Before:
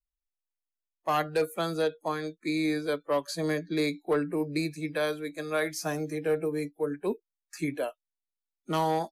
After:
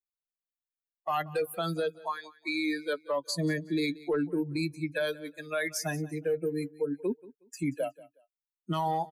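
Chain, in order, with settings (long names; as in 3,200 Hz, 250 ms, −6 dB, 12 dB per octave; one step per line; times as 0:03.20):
spectral dynamics exaggerated over time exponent 2
0:01.97–0:02.99: high-pass filter 1,100 Hz → 290 Hz 12 dB per octave
brickwall limiter −29.5 dBFS, peak gain reduction 9.5 dB
on a send: repeating echo 183 ms, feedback 23%, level −20 dB
on the sum: level +7.5 dB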